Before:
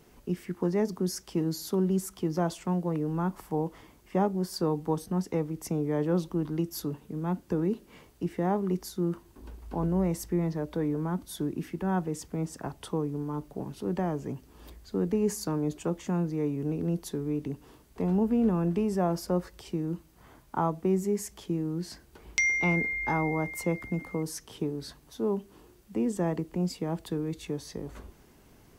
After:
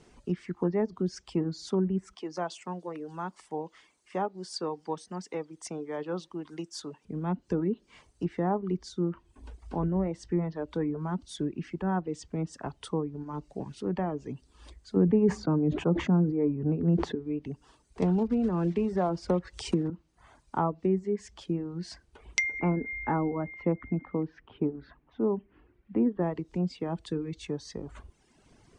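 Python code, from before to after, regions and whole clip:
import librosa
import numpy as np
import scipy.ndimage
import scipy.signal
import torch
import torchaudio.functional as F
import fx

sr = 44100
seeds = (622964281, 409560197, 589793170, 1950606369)

y = fx.chain(x, sr, fx.highpass(hz=610.0, slope=6),
    fx.echo_wet_highpass(ms=292, feedback_pct=55, hz=2200.0, wet_db=-22.0), at=(2.15, 7.05))
y = fx.chain(y, sr, fx.highpass(hz=96.0, slope=12),
    fx.low_shelf(hz=380.0, db=8.0),
    fx.sustainer(db_per_s=54.0), at=(14.96, 17.15))
y = fx.chain(y, sr, fx.block_float(bits=5),
    fx.high_shelf(hz=4900.0, db=10.5),
    fx.band_squash(depth_pct=100), at=(18.02, 19.9))
y = fx.chain(y, sr, fx.lowpass(hz=2400.0, slope=24),
    fx.peak_eq(hz=270.0, db=4.5, octaves=0.7), at=(22.59, 26.22))
y = fx.env_lowpass_down(y, sr, base_hz=1900.0, full_db=-23.0)
y = scipy.signal.sosfilt(scipy.signal.ellip(4, 1.0, 40, 9200.0, 'lowpass', fs=sr, output='sos'), y)
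y = fx.dereverb_blind(y, sr, rt60_s=1.1)
y = y * 10.0 ** (1.5 / 20.0)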